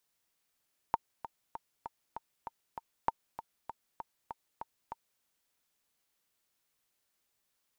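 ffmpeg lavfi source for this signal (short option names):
-f lavfi -i "aevalsrc='pow(10,(-14-13*gte(mod(t,7*60/196),60/196))/20)*sin(2*PI*913*mod(t,60/196))*exp(-6.91*mod(t,60/196)/0.03)':d=4.28:s=44100"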